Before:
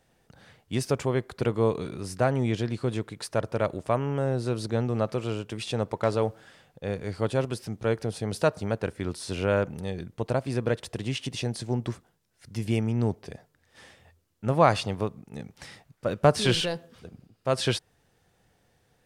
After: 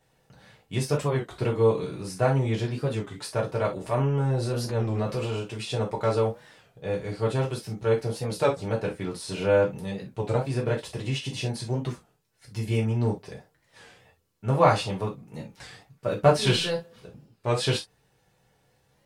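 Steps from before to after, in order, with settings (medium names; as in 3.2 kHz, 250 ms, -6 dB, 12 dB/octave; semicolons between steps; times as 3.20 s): 3.76–5.39 s: transient shaper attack -5 dB, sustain +6 dB; gated-style reverb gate 90 ms falling, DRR -4 dB; warped record 33 1/3 rpm, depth 160 cents; trim -4.5 dB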